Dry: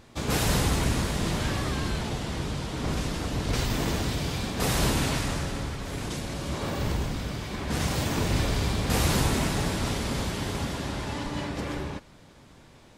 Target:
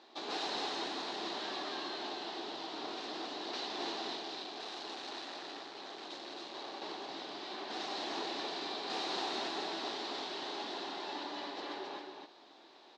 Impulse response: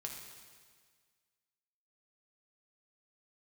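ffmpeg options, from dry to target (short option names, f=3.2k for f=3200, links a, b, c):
-filter_complex "[0:a]acompressor=threshold=-38dB:ratio=1.5,asettb=1/sr,asplit=3[a][b][c];[a]atrim=end=4.174[d];[b]atrim=start=4.17:end=6.82,asetpts=PTS-STARTPTS,afade=t=in:d=0.004:c=qsin,afade=t=out:st=2.646:d=0.004:c=qsin,asoftclip=type=hard:threshold=-37dB[e];[c]atrim=start=6.816[f];[d][e]acrossfade=d=0.004:c1=hsin:c2=qsin[g];[g][f]acrossfade=d=0.004:c1=qsin:c2=hsin,highpass=f=340:w=0.5412,highpass=f=340:w=1.3066,equalizer=f=350:t=q:w=4:g=4,equalizer=f=510:t=q:w=4:g=-7,equalizer=f=770:t=q:w=4:g=6,equalizer=f=1.4k:t=q:w=4:g=-3,equalizer=f=2.2k:t=q:w=4:g=-5,equalizer=f=4k:t=q:w=4:g=8,lowpass=f=5.1k:w=0.5412,lowpass=f=5.1k:w=1.3066,aecho=1:1:270:0.596,volume=-4dB"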